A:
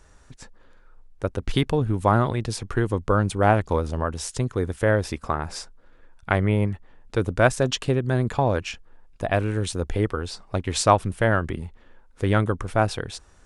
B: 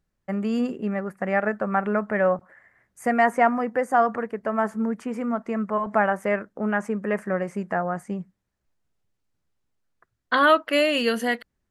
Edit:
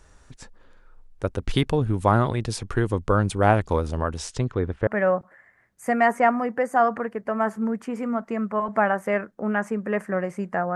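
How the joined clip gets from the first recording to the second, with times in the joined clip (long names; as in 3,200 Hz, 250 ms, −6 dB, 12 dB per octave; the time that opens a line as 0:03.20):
A
0:04.17–0:04.87: low-pass filter 9,100 Hz → 1,600 Hz
0:04.87: continue with B from 0:02.05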